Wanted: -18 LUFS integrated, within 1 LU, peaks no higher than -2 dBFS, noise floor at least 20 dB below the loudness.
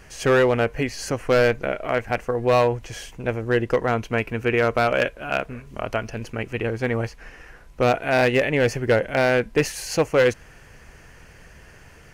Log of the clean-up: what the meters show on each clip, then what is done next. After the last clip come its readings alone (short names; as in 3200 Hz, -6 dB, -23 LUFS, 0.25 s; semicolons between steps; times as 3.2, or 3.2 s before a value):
clipped 0.9%; flat tops at -11.5 dBFS; loudness -22.5 LUFS; peak -11.5 dBFS; loudness target -18.0 LUFS
-> clip repair -11.5 dBFS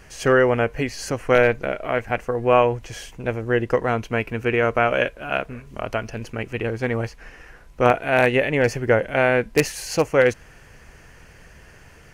clipped 0.0%; loudness -21.5 LUFS; peak -2.5 dBFS; loudness target -18.0 LUFS
-> gain +3.5 dB; limiter -2 dBFS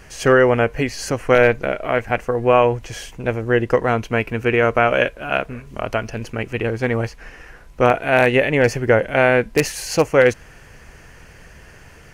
loudness -18.0 LUFS; peak -2.0 dBFS; noise floor -45 dBFS